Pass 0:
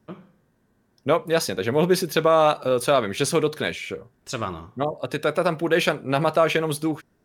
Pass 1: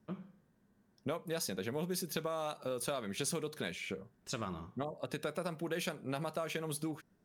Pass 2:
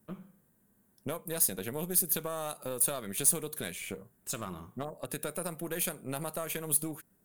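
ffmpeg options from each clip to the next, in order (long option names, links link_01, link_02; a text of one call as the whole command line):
ffmpeg -i in.wav -filter_complex "[0:a]equalizer=frequency=190:width=3.9:gain=8,acrossover=split=5300[link_01][link_02];[link_01]acompressor=threshold=-27dB:ratio=6[link_03];[link_03][link_02]amix=inputs=2:normalize=0,volume=-8dB" out.wav
ffmpeg -i in.wav -af "aeval=exprs='0.0891*(cos(1*acos(clip(val(0)/0.0891,-1,1)))-cos(1*PI/2))+0.00562*(cos(6*acos(clip(val(0)/0.0891,-1,1)))-cos(6*PI/2))':channel_layout=same,aexciter=amount=3.8:drive=9.1:freq=7600" out.wav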